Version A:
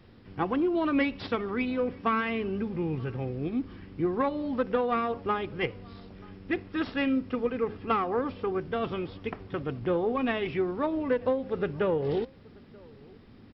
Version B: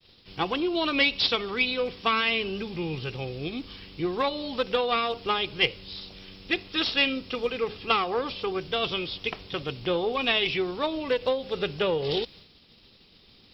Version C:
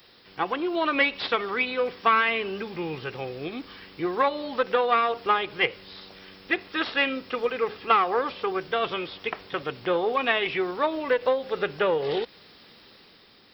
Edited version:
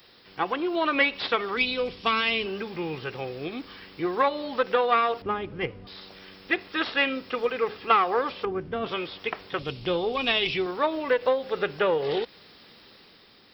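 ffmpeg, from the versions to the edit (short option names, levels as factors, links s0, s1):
-filter_complex "[1:a]asplit=2[s0][s1];[0:a]asplit=2[s2][s3];[2:a]asplit=5[s4][s5][s6][s7][s8];[s4]atrim=end=1.572[s9];[s0]atrim=start=1.568:end=2.462[s10];[s5]atrim=start=2.458:end=5.222[s11];[s2]atrim=start=5.218:end=5.872[s12];[s6]atrim=start=5.868:end=8.452[s13];[s3]atrim=start=8.448:end=8.862[s14];[s7]atrim=start=8.858:end=9.592[s15];[s1]atrim=start=9.588:end=10.662[s16];[s8]atrim=start=10.658[s17];[s9][s10]acrossfade=d=0.004:c1=hsin:c2=hsin[s18];[s18][s11]acrossfade=d=0.004:c1=hsin:c2=hsin[s19];[s19][s12]acrossfade=d=0.004:c1=hsin:c2=hsin[s20];[s20][s13]acrossfade=d=0.004:c1=hsin:c2=hsin[s21];[s21][s14]acrossfade=d=0.004:c1=hsin:c2=hsin[s22];[s22][s15]acrossfade=d=0.004:c1=hsin:c2=hsin[s23];[s23][s16]acrossfade=d=0.004:c1=hsin:c2=hsin[s24];[s24][s17]acrossfade=d=0.004:c1=hsin:c2=hsin"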